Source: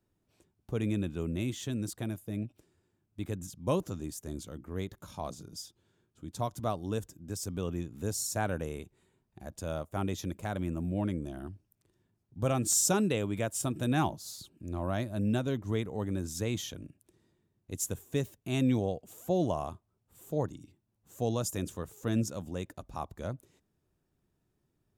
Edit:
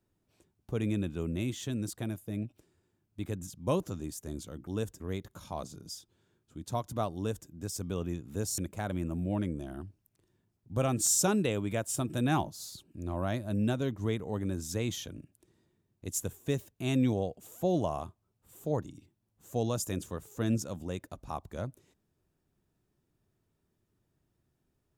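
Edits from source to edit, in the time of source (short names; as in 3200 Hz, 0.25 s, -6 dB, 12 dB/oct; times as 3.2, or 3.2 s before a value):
6.82–7.15 copy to 4.67
8.25–10.24 cut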